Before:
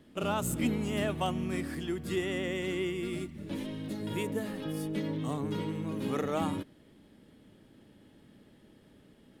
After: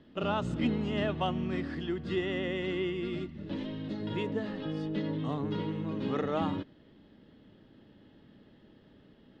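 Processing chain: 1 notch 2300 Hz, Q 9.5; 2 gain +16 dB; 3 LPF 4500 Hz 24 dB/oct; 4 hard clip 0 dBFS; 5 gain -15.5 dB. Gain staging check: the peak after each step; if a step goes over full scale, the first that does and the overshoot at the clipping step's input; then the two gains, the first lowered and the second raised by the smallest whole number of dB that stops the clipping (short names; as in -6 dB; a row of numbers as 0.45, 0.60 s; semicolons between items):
-18.5, -2.5, -2.5, -2.5, -18.0 dBFS; no overload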